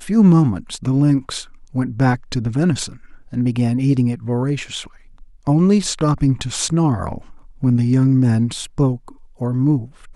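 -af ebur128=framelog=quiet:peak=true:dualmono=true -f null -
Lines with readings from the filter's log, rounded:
Integrated loudness:
  I:         -15.2 LUFS
  Threshold: -25.8 LUFS
Loudness range:
  LRA:         2.6 LU
  Threshold: -36.2 LUFS
  LRA low:   -17.4 LUFS
  LRA high:  -14.8 LUFS
True peak:
  Peak:       -2.8 dBFS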